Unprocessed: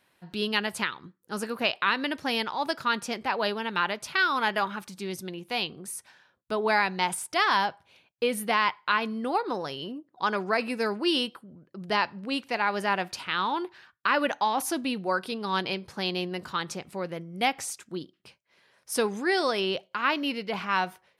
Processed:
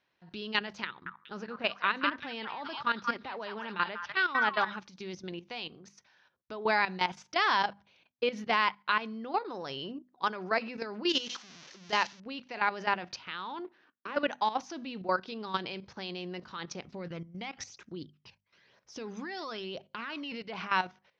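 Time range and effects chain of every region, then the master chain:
0.87–4.72 air absorption 150 m + delay with a stepping band-pass 0.191 s, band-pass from 1400 Hz, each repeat 1.4 oct, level -1 dB
11.09–12.2 switching spikes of -21.5 dBFS + LPF 8300 Hz 24 dB/oct + low shelf 340 Hz -4 dB
13.59–14.17 half-wave gain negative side -12 dB + resonant high-pass 280 Hz, resonance Q 2 + tape spacing loss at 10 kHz 23 dB
16.84–20.32 low shelf 110 Hz +5 dB + compressor 12:1, threshold -27 dBFS + phaser 1 Hz, delay 1.2 ms, feedback 44%
whole clip: elliptic low-pass 6100 Hz, stop band 40 dB; level quantiser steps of 13 dB; notches 50/100/150/200/250 Hz

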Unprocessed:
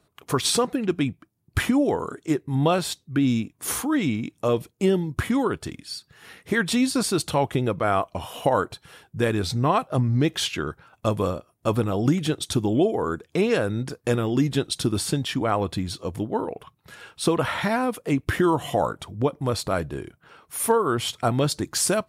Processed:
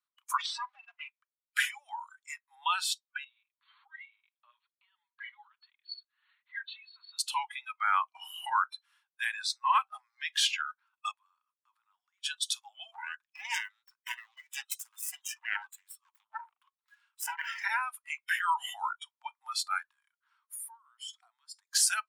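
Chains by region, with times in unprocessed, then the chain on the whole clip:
0.38–1.09 minimum comb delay 4.9 ms + compressor 8:1, threshold -23 dBFS + air absorption 130 m
3.24–7.19 compressor 3:1, threshold -30 dBFS + flange 1.2 Hz, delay 1.8 ms, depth 6.7 ms, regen -2% + brick-wall FIR low-pass 4500 Hz
11.11–12.24 high shelf 2600 Hz -8.5 dB + compressor 3:1, threshold -40 dBFS + transient shaper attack -4 dB, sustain +4 dB
12.92–17.64 self-modulated delay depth 0.44 ms + dynamic EQ 4200 Hz, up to -6 dB, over -51 dBFS, Q 4 + tremolo saw down 1.9 Hz, depth 55%
19.91–21.75 bell 2700 Hz -6.5 dB 0.21 oct + compressor 12:1, threshold -34 dBFS
whole clip: spectral noise reduction 22 dB; steep high-pass 930 Hz 72 dB/oct; high shelf 12000 Hz -7.5 dB

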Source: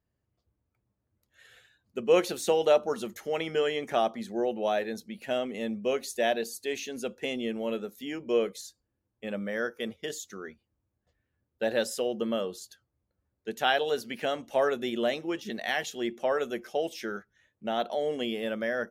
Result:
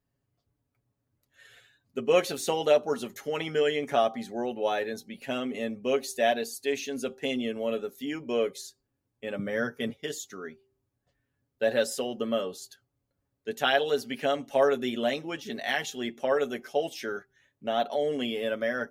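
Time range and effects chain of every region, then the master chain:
9.39–9.9 bell 130 Hz +12.5 dB 1.4 oct + mismatched tape noise reduction encoder only
whole clip: bell 240 Hz +3.5 dB 0.2 oct; comb 7.2 ms, depth 61%; de-hum 390.2 Hz, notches 2

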